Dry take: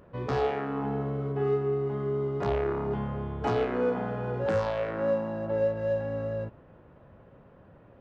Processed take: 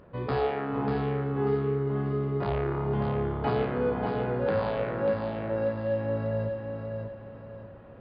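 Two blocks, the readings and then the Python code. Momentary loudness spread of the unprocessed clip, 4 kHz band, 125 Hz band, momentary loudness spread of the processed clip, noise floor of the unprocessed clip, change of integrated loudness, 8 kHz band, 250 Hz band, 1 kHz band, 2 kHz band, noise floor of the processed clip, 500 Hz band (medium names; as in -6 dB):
5 LU, +1.0 dB, +3.0 dB, 10 LU, -55 dBFS, +0.5 dB, no reading, +2.0 dB, +1.0 dB, +1.0 dB, -46 dBFS, 0.0 dB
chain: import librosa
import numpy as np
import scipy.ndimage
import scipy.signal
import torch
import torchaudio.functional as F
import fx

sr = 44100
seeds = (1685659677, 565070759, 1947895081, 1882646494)

p1 = fx.rider(x, sr, range_db=10, speed_s=0.5)
p2 = fx.brickwall_lowpass(p1, sr, high_hz=5000.0)
y = p2 + fx.echo_feedback(p2, sr, ms=591, feedback_pct=36, wet_db=-5.5, dry=0)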